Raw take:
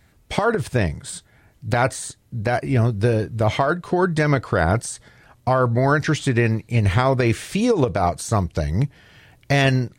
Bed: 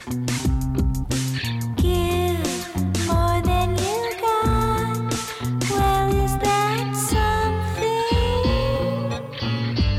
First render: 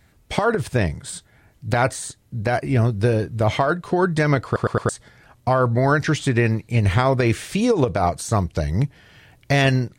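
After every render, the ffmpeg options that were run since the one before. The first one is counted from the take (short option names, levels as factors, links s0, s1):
-filter_complex "[0:a]asplit=5[s0][s1][s2][s3][s4];[s0]atrim=end=4.562[s5];[s1]atrim=start=4.448:end=4.562[s6];[s2]atrim=start=4.448:end=4.562[s7];[s3]atrim=start=4.448:end=4.562[s8];[s4]atrim=start=4.888[s9];[s5][s6]acrossfade=d=0.004:c1=hsin:c2=hsin[s10];[s10][s7]acrossfade=d=0.004:c1=hsin:c2=hsin[s11];[s11][s8]acrossfade=d=0.004:c1=hsin:c2=hsin[s12];[s12][s9]acrossfade=d=0.004:c1=hsin:c2=hsin"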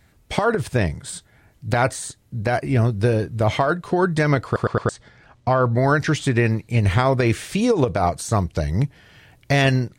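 -filter_complex "[0:a]asettb=1/sr,asplit=3[s0][s1][s2];[s0]atrim=end=4.664[s3];[s1]atrim=start=4.66:end=5.74,asetpts=PTS-STARTPTS,afade=t=in:d=0.004:c=qsin,afade=t=out:st=1.076:d=0.004:c=qsin,lowpass=5900[s4];[s2]atrim=start=5.736[s5];[s3][s4]acrossfade=d=0.004:c1=hsin:c2=qsin[s6];[s6][s5]acrossfade=d=0.004:c1=qsin:c2=hsin"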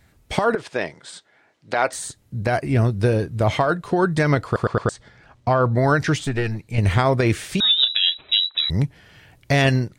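-filter_complex "[0:a]asettb=1/sr,asplit=3[s0][s1][s2];[s0]atrim=end=0.554[s3];[s1]atrim=start=0.55:end=1.93,asetpts=PTS-STARTPTS,afade=t=in:d=0.004:c=qsin,afade=t=out:st=1.376:d=0.004:c=qsin,highpass=390,lowpass=5300[s4];[s2]atrim=start=1.926[s5];[s3][s4]acrossfade=d=0.004:c1=hsin:c2=qsin[s6];[s6][s5]acrossfade=d=0.004:c1=qsin:c2=hsin,asettb=1/sr,asplit=3[s7][s8][s9];[s7]atrim=end=6.244[s10];[s8]atrim=start=6.24:end=6.78,asetpts=PTS-STARTPTS,afade=t=in:d=0.004:c=qsin,afade=t=out:st=0.536:d=0.004:c=qsin,aeval=exprs='(tanh(4.47*val(0)+0.65)-tanh(0.65))/4.47':c=same[s11];[s9]atrim=start=6.776[s12];[s10][s11]acrossfade=d=0.004:c1=hsin:c2=qsin[s13];[s13][s12]acrossfade=d=0.004:c1=qsin:c2=hsin,asettb=1/sr,asplit=3[s14][s15][s16];[s14]atrim=end=7.604[s17];[s15]atrim=start=7.6:end=8.7,asetpts=PTS-STARTPTS,afade=t=in:d=0.004:c=qsin,afade=t=out:st=1.096:d=0.004:c=qsin,lowpass=f=3400:t=q:w=0.5098,lowpass=f=3400:t=q:w=0.6013,lowpass=f=3400:t=q:w=0.9,lowpass=f=3400:t=q:w=2.563,afreqshift=-4000[s18];[s16]atrim=start=8.696[s19];[s17][s18]acrossfade=d=0.004:c1=hsin:c2=qsin[s20];[s20][s19]acrossfade=d=0.004:c1=qsin:c2=hsin"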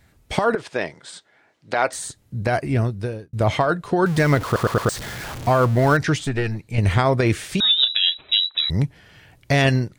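-filter_complex "[0:a]asettb=1/sr,asplit=3[s0][s1][s2];[s0]atrim=end=4.064[s3];[s1]atrim=start=4.06:end=5.97,asetpts=PTS-STARTPTS,afade=t=in:d=0.004:c=qsin,afade=t=out:st=1.906:d=0.004:c=qsin,aeval=exprs='val(0)+0.5*0.0447*sgn(val(0))':c=same[s4];[s2]atrim=start=5.966[s5];[s3][s4]acrossfade=d=0.004:c1=hsin:c2=qsin[s6];[s6][s5]acrossfade=d=0.004:c1=qsin:c2=hsin,asplit=2[s7][s8];[s7]atrim=end=3.33,asetpts=PTS-STARTPTS,afade=t=out:st=2.64:d=0.69[s9];[s8]atrim=start=3.33,asetpts=PTS-STARTPTS,afade=t=in:d=0.004:c=hsin[s10];[s9][s10]concat=n=2:v=0:a=1"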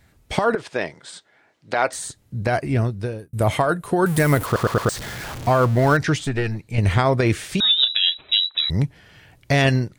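-filter_complex "[0:a]asettb=1/sr,asplit=3[s0][s1][s2];[s0]atrim=end=3.184[s3];[s1]atrim=start=3.18:end=4.46,asetpts=PTS-STARTPTS,afade=t=in:d=0.004:c=qsin,afade=t=out:st=1.276:d=0.004:c=qsin,highshelf=f=7500:t=q:w=1.5:g=11[s4];[s2]atrim=start=4.456[s5];[s3][s4]acrossfade=d=0.004:c1=hsin:c2=qsin[s6];[s6][s5]acrossfade=d=0.004:c1=qsin:c2=hsin"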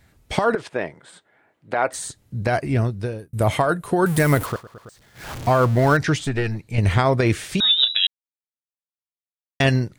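-filter_complex "[0:a]asettb=1/sr,asplit=3[s0][s1][s2];[s0]atrim=end=0.694[s3];[s1]atrim=start=0.69:end=1.94,asetpts=PTS-STARTPTS,afade=t=in:d=0.004:c=qsin,afade=t=out:st=1.246:d=0.004:c=qsin,equalizer=f=5300:w=0.86:g=-14[s4];[s2]atrim=start=1.936[s5];[s3][s4]acrossfade=d=0.004:c1=hsin:c2=qsin[s6];[s6][s5]acrossfade=d=0.004:c1=qsin:c2=hsin,asplit=5[s7][s8][s9][s10][s11];[s7]atrim=end=4.62,asetpts=PTS-STARTPTS,afade=t=out:st=4.44:d=0.18:silence=0.0749894[s12];[s8]atrim=start=4.62:end=5.14,asetpts=PTS-STARTPTS,volume=0.075[s13];[s9]atrim=start=5.14:end=8.07,asetpts=PTS-STARTPTS,afade=t=in:d=0.18:silence=0.0749894,afade=t=out:st=2.926:d=0.004:c=hsin[s14];[s10]atrim=start=8.07:end=9.6,asetpts=PTS-STARTPTS,volume=0[s15];[s11]atrim=start=9.6,asetpts=PTS-STARTPTS,afade=t=in:d=0.004:c=hsin[s16];[s12][s13][s14][s15][s16]concat=n=5:v=0:a=1"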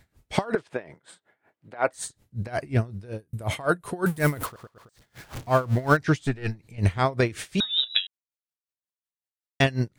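-af "aeval=exprs='val(0)*pow(10,-21*(0.5-0.5*cos(2*PI*5.4*n/s))/20)':c=same"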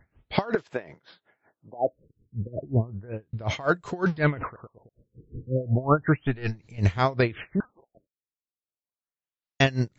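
-af "crystalizer=i=0.5:c=0,afftfilt=real='re*lt(b*sr/1024,490*pow(8000/490,0.5+0.5*sin(2*PI*0.33*pts/sr)))':imag='im*lt(b*sr/1024,490*pow(8000/490,0.5+0.5*sin(2*PI*0.33*pts/sr)))':win_size=1024:overlap=0.75"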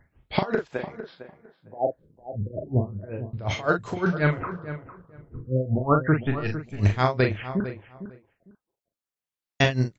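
-filter_complex "[0:a]asplit=2[s0][s1];[s1]adelay=39,volume=0.501[s2];[s0][s2]amix=inputs=2:normalize=0,asplit=2[s3][s4];[s4]adelay=454,lowpass=f=1800:p=1,volume=0.251,asplit=2[s5][s6];[s6]adelay=454,lowpass=f=1800:p=1,volume=0.18[s7];[s3][s5][s7]amix=inputs=3:normalize=0"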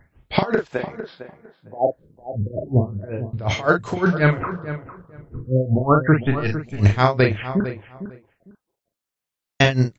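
-af "volume=1.88,alimiter=limit=0.794:level=0:latency=1"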